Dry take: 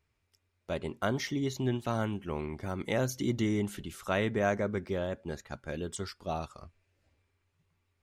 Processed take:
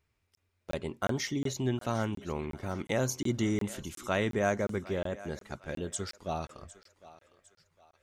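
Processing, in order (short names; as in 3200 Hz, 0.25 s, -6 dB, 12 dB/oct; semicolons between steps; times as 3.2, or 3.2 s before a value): dynamic EQ 7000 Hz, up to +6 dB, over -59 dBFS, Q 1.8; on a send: thinning echo 0.756 s, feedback 41%, high-pass 450 Hz, level -16.5 dB; on the sum: crackling interface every 0.36 s, samples 1024, zero, from 0.35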